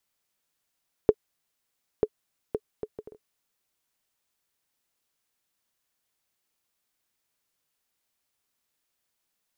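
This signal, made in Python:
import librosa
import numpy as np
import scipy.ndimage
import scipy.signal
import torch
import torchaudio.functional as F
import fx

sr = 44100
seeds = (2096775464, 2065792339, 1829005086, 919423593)

y = fx.bouncing_ball(sr, first_gap_s=0.94, ratio=0.55, hz=428.0, decay_ms=52.0, level_db=-6.0)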